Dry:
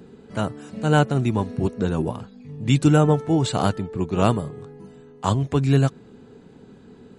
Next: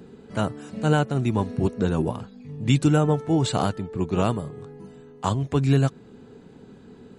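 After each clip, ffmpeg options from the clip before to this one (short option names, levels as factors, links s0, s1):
-af "alimiter=limit=0.376:level=0:latency=1:release=461"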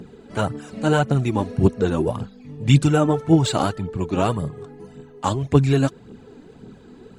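-af "aphaser=in_gain=1:out_gain=1:delay=3.8:decay=0.52:speed=1.8:type=triangular,volume=1.26"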